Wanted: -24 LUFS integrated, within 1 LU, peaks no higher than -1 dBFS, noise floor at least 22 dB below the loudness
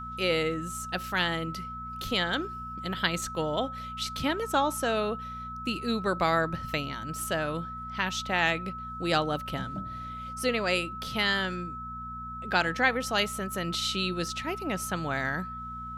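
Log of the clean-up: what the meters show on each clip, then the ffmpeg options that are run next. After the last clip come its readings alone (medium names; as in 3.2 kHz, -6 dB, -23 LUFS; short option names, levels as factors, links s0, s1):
hum 60 Hz; highest harmonic 240 Hz; hum level -42 dBFS; steady tone 1.3 kHz; tone level -37 dBFS; loudness -30.0 LUFS; peak level -9.0 dBFS; loudness target -24.0 LUFS
-> -af "bandreject=f=60:t=h:w=4,bandreject=f=120:t=h:w=4,bandreject=f=180:t=h:w=4,bandreject=f=240:t=h:w=4"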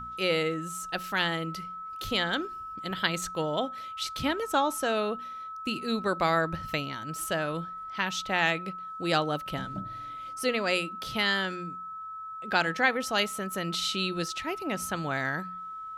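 hum not found; steady tone 1.3 kHz; tone level -37 dBFS
-> -af "bandreject=f=1300:w=30"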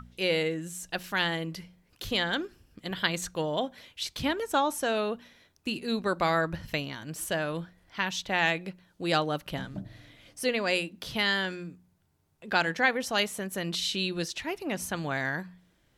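steady tone not found; loudness -30.0 LUFS; peak level -9.0 dBFS; loudness target -24.0 LUFS
-> -af "volume=2"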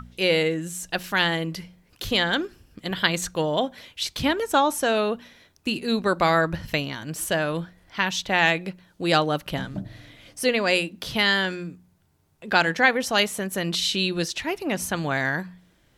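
loudness -24.0 LUFS; peak level -3.0 dBFS; noise floor -62 dBFS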